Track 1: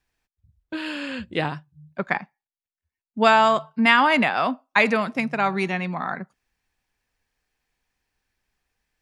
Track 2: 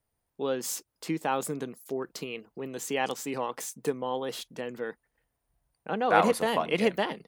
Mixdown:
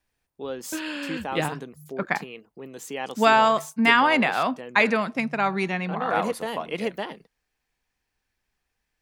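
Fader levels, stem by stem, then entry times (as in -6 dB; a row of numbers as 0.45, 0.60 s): -1.5, -3.0 dB; 0.00, 0.00 s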